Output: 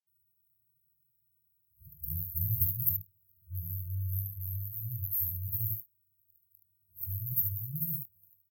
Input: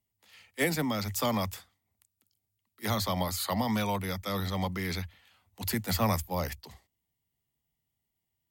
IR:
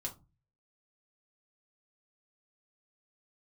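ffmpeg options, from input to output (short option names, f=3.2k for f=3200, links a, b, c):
-filter_complex "[0:a]areverse,highpass=79,aemphasis=mode=production:type=cd,asplit=2[a][b];[b]aecho=0:1:23|43|73:0.335|0.266|0.501[c];[a][c]amix=inputs=2:normalize=0,afftfilt=real='re*(1-between(b*sr/4096,170,12000))':imag='im*(1-between(b*sr/4096,170,12000))':win_size=4096:overlap=0.75"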